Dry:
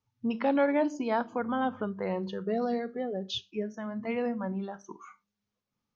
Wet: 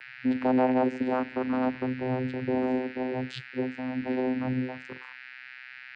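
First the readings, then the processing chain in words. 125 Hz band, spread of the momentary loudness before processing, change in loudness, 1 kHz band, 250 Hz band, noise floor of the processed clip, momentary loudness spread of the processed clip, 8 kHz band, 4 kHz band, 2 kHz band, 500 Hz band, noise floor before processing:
+6.5 dB, 10 LU, +2.5 dB, +1.0 dB, +4.0 dB, -47 dBFS, 18 LU, no reading, -5.0 dB, +3.0 dB, +1.0 dB, under -85 dBFS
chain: whistle 2.3 kHz -39 dBFS; vocoder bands 8, saw 128 Hz; trim +3 dB

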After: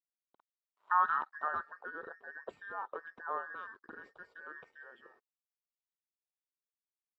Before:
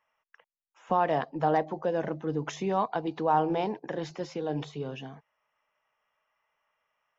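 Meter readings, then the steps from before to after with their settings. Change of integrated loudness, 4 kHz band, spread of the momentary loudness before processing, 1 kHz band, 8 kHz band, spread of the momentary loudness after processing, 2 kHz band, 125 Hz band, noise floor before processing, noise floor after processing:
-7.0 dB, under -20 dB, 11 LU, -6.5 dB, no reading, 21 LU, +1.0 dB, under -30 dB, under -85 dBFS, under -85 dBFS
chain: every band turned upside down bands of 2 kHz; bass shelf 88 Hz +10 dB; crossover distortion -54.5 dBFS; band-pass sweep 1 kHz -> 470 Hz, 1.14–1.84 s

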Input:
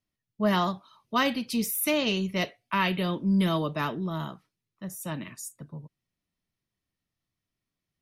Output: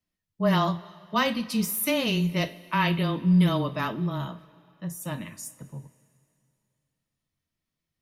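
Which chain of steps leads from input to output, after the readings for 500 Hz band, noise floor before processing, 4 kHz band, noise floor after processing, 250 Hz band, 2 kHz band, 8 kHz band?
+0.5 dB, under -85 dBFS, +0.5 dB, under -85 dBFS, +2.0 dB, +0.5 dB, +0.5 dB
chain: frequency shift -15 Hz; two-slope reverb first 0.23 s, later 2.6 s, from -19 dB, DRR 9 dB

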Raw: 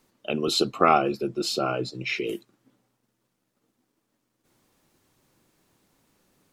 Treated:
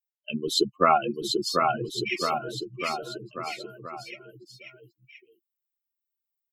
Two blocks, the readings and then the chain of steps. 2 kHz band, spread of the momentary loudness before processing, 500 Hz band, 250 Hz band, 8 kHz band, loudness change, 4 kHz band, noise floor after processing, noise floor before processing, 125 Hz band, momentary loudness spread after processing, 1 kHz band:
0.0 dB, 11 LU, -1.0 dB, -2.0 dB, +0.5 dB, -2.0 dB, +1.0 dB, under -85 dBFS, -77 dBFS, -1.5 dB, 20 LU, +1.0 dB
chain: expander on every frequency bin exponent 3; bouncing-ball echo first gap 740 ms, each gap 0.9×, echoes 5; trim +3 dB

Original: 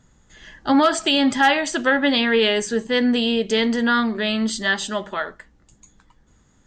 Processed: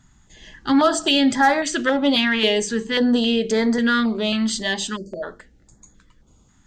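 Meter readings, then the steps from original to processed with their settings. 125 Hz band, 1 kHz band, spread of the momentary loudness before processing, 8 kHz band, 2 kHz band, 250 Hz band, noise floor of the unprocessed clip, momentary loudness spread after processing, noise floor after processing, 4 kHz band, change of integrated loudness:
no reading, -0.5 dB, 9 LU, +2.0 dB, -2.0 dB, +1.0 dB, -58 dBFS, 11 LU, -57 dBFS, 0.0 dB, 0.0 dB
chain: spectral selection erased 4.96–5.23 s, 650–4300 Hz; de-hum 50.05 Hz, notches 10; in parallel at -10 dB: saturation -16.5 dBFS, distortion -12 dB; on the sum: step-sequenced notch 3.7 Hz 500–2900 Hz

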